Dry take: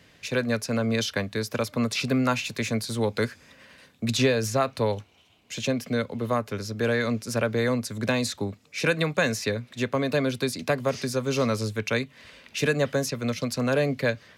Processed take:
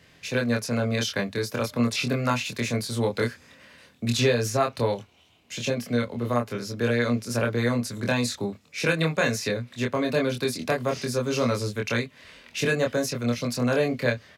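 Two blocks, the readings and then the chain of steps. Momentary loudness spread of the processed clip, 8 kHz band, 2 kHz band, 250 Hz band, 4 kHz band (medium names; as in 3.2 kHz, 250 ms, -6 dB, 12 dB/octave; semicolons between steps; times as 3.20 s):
5 LU, +0.5 dB, +0.5 dB, +0.5 dB, +0.5 dB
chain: doubling 25 ms -2.5 dB; trim -1.5 dB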